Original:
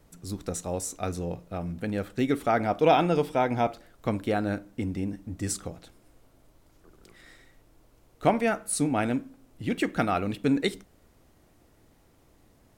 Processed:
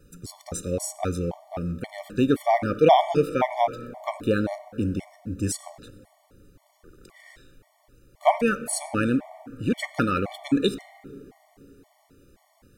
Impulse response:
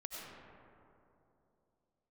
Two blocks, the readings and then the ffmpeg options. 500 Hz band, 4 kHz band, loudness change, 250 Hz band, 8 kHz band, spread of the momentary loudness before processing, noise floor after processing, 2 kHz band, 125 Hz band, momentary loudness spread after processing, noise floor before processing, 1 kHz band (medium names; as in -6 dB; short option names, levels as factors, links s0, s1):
+3.0 dB, +3.0 dB, +2.5 dB, +2.0 dB, +1.5 dB, 11 LU, -65 dBFS, +1.5 dB, +1.5 dB, 15 LU, -61 dBFS, +3.5 dB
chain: -filter_complex "[0:a]asplit=2[s0][s1];[s1]adynamicequalizer=threshold=0.0126:dfrequency=110:dqfactor=0.81:tfrequency=110:tqfactor=0.81:attack=5:release=100:ratio=0.375:range=1.5:mode=cutabove:tftype=bell[s2];[1:a]atrim=start_sample=2205[s3];[s2][s3]afir=irnorm=-1:irlink=0,volume=0.251[s4];[s0][s4]amix=inputs=2:normalize=0,afftfilt=real='re*gt(sin(2*PI*1.9*pts/sr)*(1-2*mod(floor(b*sr/1024/590),2)),0)':imag='im*gt(sin(2*PI*1.9*pts/sr)*(1-2*mod(floor(b*sr/1024/590),2)),0)':win_size=1024:overlap=0.75,volume=1.58"